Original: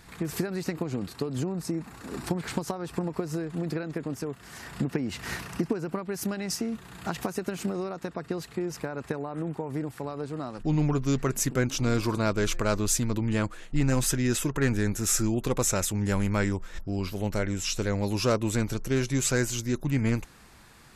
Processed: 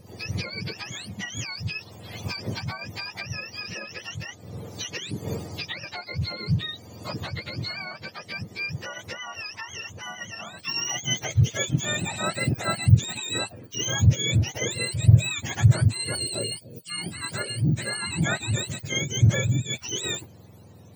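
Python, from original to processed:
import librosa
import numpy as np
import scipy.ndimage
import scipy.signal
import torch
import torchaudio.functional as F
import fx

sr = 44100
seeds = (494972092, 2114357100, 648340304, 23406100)

y = fx.octave_mirror(x, sr, pivot_hz=920.0)
y = fx.band_shelf(y, sr, hz=1300.0, db=-14.0, octaves=1.7, at=(16.15, 16.9))
y = y * 10.0 ** (1.0 / 20.0)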